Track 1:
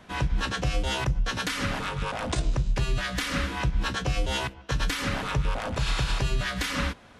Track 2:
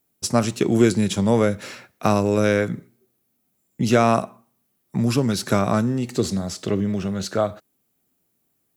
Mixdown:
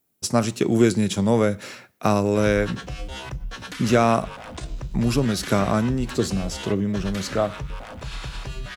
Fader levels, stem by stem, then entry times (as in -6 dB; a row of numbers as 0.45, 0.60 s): -6.5, -1.0 dB; 2.25, 0.00 s